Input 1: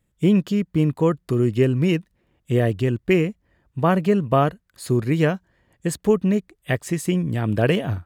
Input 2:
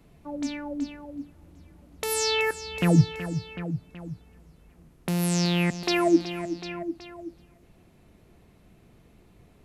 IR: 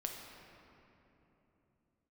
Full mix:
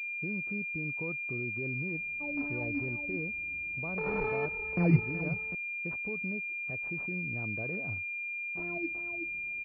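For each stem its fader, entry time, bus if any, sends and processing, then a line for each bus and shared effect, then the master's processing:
-16.0 dB, 0.00 s, no send, peak limiter -15.5 dBFS, peak gain reduction 9 dB
-6.0 dB, 1.95 s, muted 5.55–8.55 s, no send, none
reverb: none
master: class-D stage that switches slowly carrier 2.4 kHz

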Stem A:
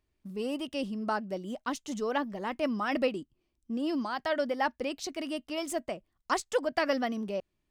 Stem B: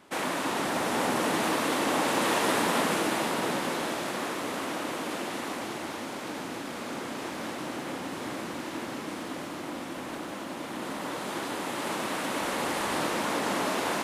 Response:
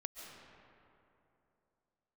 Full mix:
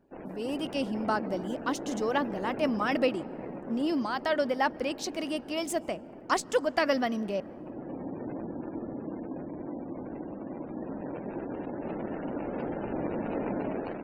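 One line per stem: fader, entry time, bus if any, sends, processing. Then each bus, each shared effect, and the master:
-5.0 dB, 0.00 s, send -17.5 dB, none
-5.5 dB, 0.00 s, send -18.5 dB, median filter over 41 samples; spectral gate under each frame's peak -25 dB strong; auto duck -9 dB, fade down 0.75 s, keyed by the first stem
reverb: on, RT60 2.9 s, pre-delay 100 ms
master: level rider gain up to 6.5 dB

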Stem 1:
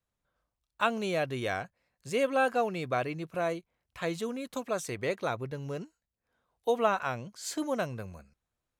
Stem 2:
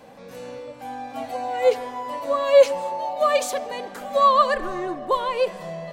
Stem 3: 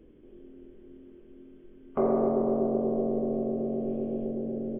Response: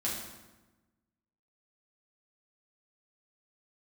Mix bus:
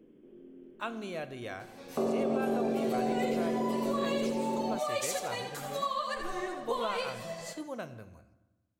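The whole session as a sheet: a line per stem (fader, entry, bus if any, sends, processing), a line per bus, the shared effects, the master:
-10.0 dB, 0.00 s, send -13.5 dB, no echo send, none
-5.5 dB, 1.60 s, no send, echo send -7 dB, treble shelf 2.5 kHz +11 dB; compression 12:1, threshold -21 dBFS, peak gain reduction 14 dB; three-phase chorus
-3.0 dB, 0.00 s, no send, no echo send, resonant low shelf 110 Hz -13 dB, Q 1.5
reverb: on, RT60 1.1 s, pre-delay 5 ms
echo: feedback delay 83 ms, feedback 34%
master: peak limiter -21.5 dBFS, peak gain reduction 6 dB

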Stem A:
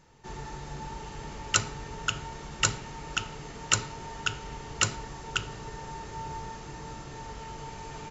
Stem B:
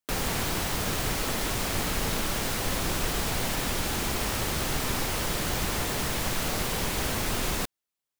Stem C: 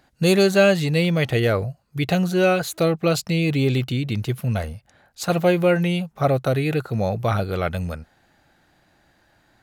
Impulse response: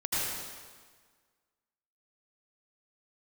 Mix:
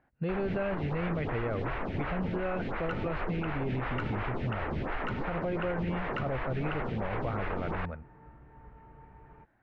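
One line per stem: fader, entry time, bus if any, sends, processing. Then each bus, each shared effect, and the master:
-7.5 dB, 1.35 s, no send, hum 60 Hz, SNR 12 dB; three bands expanded up and down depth 100%
+0.5 dB, 0.20 s, no send, bit crusher 5-bit; lamp-driven phase shifter 2.8 Hz
-10.0 dB, 0.00 s, no send, none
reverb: none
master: low-pass 2.2 kHz 24 dB/octave; peak limiter -24 dBFS, peak gain reduction 10.5 dB

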